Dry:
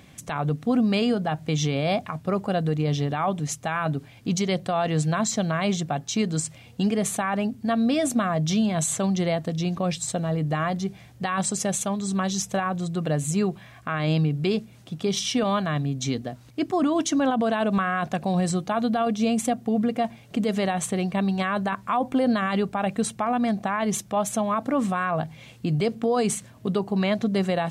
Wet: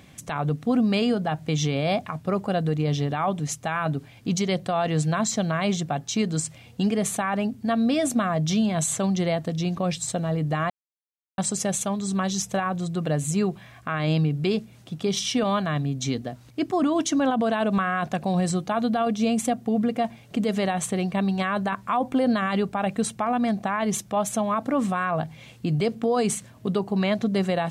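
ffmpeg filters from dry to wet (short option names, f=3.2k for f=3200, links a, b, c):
-filter_complex "[0:a]asplit=3[a][b][c];[a]atrim=end=10.7,asetpts=PTS-STARTPTS,afade=t=out:st=10.696:d=0.004:c=hsin[d];[b]atrim=start=10.7:end=11.38,asetpts=PTS-STARTPTS,volume=0[e];[c]atrim=start=11.38,asetpts=PTS-STARTPTS,afade=t=in:d=0.004:c=hsin[f];[d][e][f]concat=n=3:v=0:a=1"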